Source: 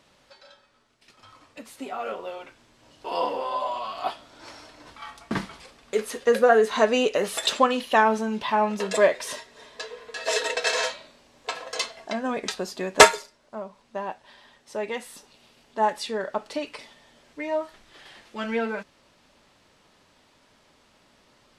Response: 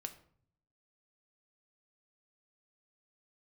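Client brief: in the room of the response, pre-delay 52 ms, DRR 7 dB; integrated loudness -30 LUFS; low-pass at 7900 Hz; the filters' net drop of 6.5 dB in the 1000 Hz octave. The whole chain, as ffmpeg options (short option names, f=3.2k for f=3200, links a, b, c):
-filter_complex "[0:a]lowpass=7.9k,equalizer=f=1k:t=o:g=-8.5,asplit=2[a][b];[1:a]atrim=start_sample=2205,adelay=52[c];[b][c]afir=irnorm=-1:irlink=0,volume=-4dB[d];[a][d]amix=inputs=2:normalize=0,volume=-3.5dB"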